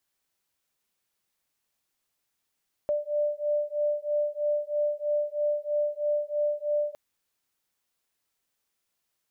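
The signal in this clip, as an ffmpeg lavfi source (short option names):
-f lavfi -i "aevalsrc='0.0398*(sin(2*PI*590*t)+sin(2*PI*593.1*t))':d=4.06:s=44100"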